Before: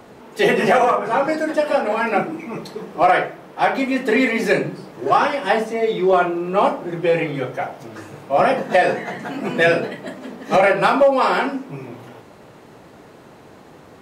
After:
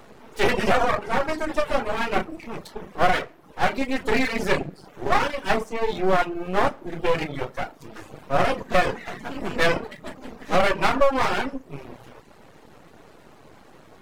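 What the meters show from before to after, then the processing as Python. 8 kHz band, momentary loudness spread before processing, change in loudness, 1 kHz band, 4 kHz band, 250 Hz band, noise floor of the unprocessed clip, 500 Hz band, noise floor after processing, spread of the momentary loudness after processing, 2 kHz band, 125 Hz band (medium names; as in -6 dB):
no reading, 16 LU, -5.5 dB, -5.5 dB, -1.5 dB, -6.0 dB, -45 dBFS, -7.0 dB, -51 dBFS, 17 LU, -4.5 dB, -2.5 dB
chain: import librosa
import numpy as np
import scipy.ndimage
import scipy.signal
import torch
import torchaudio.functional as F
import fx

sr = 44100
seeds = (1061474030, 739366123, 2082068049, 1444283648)

y = np.maximum(x, 0.0)
y = fx.dereverb_blind(y, sr, rt60_s=0.56)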